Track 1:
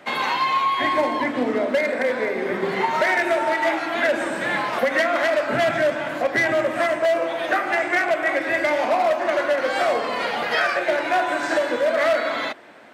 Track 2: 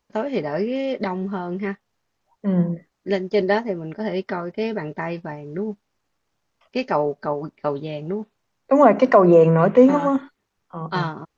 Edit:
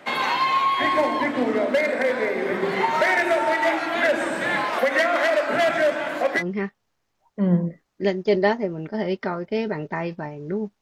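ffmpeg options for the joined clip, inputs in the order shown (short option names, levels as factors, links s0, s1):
-filter_complex "[0:a]asettb=1/sr,asplit=3[s0][s1][s2];[s0]atrim=end=4.654[s3];[s1]atrim=start=4.65:end=6.43,asetpts=PTS-STARTPTS,afade=t=in:d=0.004:c=qsin,afade=t=out:st=1.776:d=0.004:c=qsin,highpass=220[s4];[s2]atrim=start=6.426[s5];[s3][s4]acrossfade=d=0.004:c1=hsin:c2=qsin[s6];[s6][s5]acrossfade=d=0.004:c1=qsin:c2=hsin,apad=whole_dur=10.81,atrim=end=10.81,atrim=end=6.43,asetpts=PTS-STARTPTS[s7];[1:a]atrim=start=1.43:end=5.87,asetpts=PTS-STARTPTS[s8];[s7][s8]acrossfade=d=0.06:c1=tri:c2=tri"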